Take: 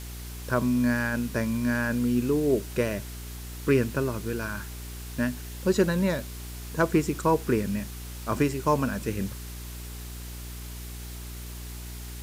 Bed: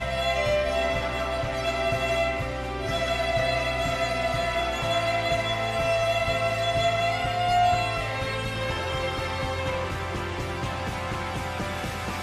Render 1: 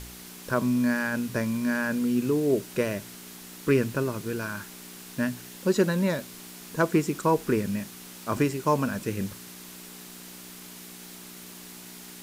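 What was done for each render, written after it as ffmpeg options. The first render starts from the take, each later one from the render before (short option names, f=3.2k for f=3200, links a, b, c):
-af "bandreject=f=60:t=h:w=4,bandreject=f=120:t=h:w=4"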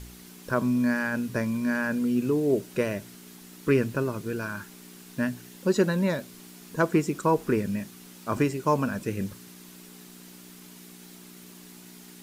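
-af "afftdn=nr=6:nf=-45"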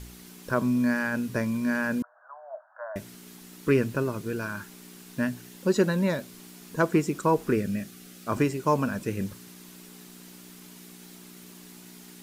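-filter_complex "[0:a]asettb=1/sr,asplit=3[a][b][c];[a]atrim=end=2.024[d];[b]atrim=start=2.02:end=2.96,asetpts=PTS-STARTPTS,afade=t=in:d=0.004:c=qsin,afade=t=out:st=0.936:d=0.004:c=qsin,asuperpass=centerf=1000:order=20:qfactor=0.95[e];[c]atrim=start=2.956[f];[d][e]acrossfade=d=0.004:c1=hsin:c2=qsin[g];[g][f]acrossfade=d=0.004:c1=qsin:c2=hsin,asettb=1/sr,asplit=3[h][i][j];[h]atrim=end=7.534[k];[i]atrim=start=7.53:end=8.28,asetpts=PTS-STARTPTS,afade=t=in:d=0.004:c=qsin,afade=t=out:st=0.746:d=0.004:c=qsin,asuperstop=centerf=950:order=4:qfactor=3.4[l];[j]atrim=start=8.276[m];[k][l]acrossfade=d=0.004:c1=hsin:c2=qsin[n];[n][m]acrossfade=d=0.004:c1=qsin:c2=hsin"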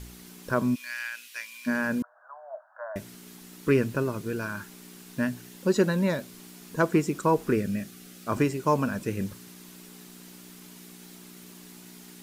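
-filter_complex "[0:a]asplit=3[a][b][c];[a]afade=t=out:st=0.74:d=0.02[d];[b]highpass=f=2.6k:t=q:w=2,afade=t=in:st=0.74:d=0.02,afade=t=out:st=1.66:d=0.02[e];[c]afade=t=in:st=1.66:d=0.02[f];[d][e][f]amix=inputs=3:normalize=0"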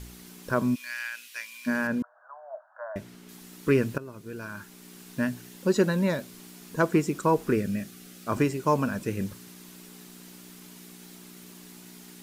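-filter_complex "[0:a]asettb=1/sr,asplit=3[a][b][c];[a]atrim=end=1.874[d];[b]atrim=start=1.87:end=3.29,asetpts=PTS-STARTPTS,afade=t=in:d=0.004:c=qsin,afade=t=out:st=1.416:d=0.004:c=qsin,highshelf=f=5k:g=-10[e];[c]atrim=start=3.286[f];[d][e]acrossfade=d=0.004:c1=hsin:c2=qsin[g];[g][f]acrossfade=d=0.004:c1=qsin:c2=hsin,asplit=2[h][i];[h]atrim=end=3.98,asetpts=PTS-STARTPTS,afade=t=out:st=3.976:d=0.004:c=hsin:silence=0.149624[j];[i]atrim=start=3.98,asetpts=PTS-STARTPTS,afade=t=in:d=1.04:silence=0.149624[k];[j][k]concat=n=2:v=0:a=1"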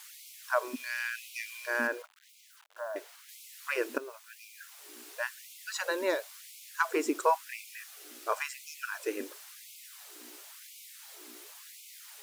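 -af "acrusher=bits=8:mix=0:aa=0.000001,afftfilt=real='re*gte(b*sr/1024,250*pow(2100/250,0.5+0.5*sin(2*PI*0.95*pts/sr)))':imag='im*gte(b*sr/1024,250*pow(2100/250,0.5+0.5*sin(2*PI*0.95*pts/sr)))':win_size=1024:overlap=0.75"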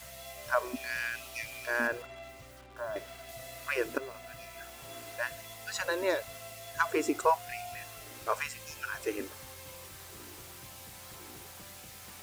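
-filter_complex "[1:a]volume=-22.5dB[a];[0:a][a]amix=inputs=2:normalize=0"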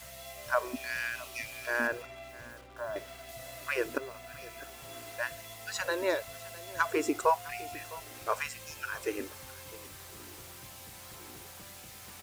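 -af "aecho=1:1:657:0.106"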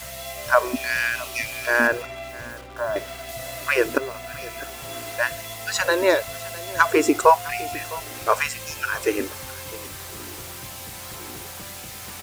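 -af "volume=11.5dB"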